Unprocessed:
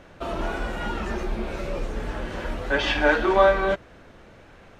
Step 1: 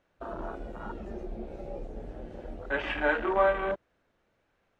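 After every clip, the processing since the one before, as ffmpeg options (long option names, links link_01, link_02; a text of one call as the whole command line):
ffmpeg -i in.wav -af "afwtdn=0.0501,lowshelf=frequency=290:gain=-5,volume=-6dB" out.wav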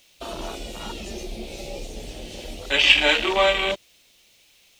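ffmpeg -i in.wav -af "aexciter=amount=12:drive=7.5:freq=2400,volume=4dB" out.wav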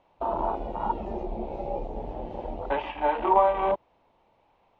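ffmpeg -i in.wav -af "acompressor=threshold=-21dB:ratio=16,lowpass=frequency=910:width_type=q:width=4.9" out.wav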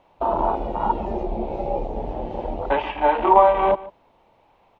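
ffmpeg -i in.wav -af "aecho=1:1:146:0.112,volume=6.5dB" out.wav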